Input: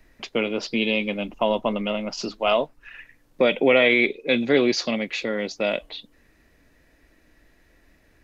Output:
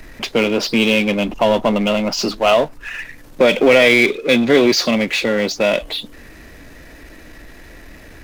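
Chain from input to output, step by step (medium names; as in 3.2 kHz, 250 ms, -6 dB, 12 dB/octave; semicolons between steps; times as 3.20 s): power-law waveshaper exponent 0.7; trim +4 dB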